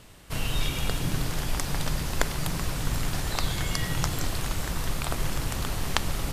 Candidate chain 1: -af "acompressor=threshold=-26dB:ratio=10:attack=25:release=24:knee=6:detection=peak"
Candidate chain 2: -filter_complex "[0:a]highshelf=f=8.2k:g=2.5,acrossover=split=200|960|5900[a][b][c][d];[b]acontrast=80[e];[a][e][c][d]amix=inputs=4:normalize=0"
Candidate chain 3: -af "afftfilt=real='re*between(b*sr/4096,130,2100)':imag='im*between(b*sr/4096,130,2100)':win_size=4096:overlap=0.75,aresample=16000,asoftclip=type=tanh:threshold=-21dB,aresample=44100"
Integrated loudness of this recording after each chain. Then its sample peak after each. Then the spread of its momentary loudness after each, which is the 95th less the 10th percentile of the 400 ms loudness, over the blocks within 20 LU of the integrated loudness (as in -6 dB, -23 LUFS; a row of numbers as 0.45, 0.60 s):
-31.0, -28.0, -36.0 LUFS; -4.5, -3.0, -20.0 dBFS; 2, 2, 2 LU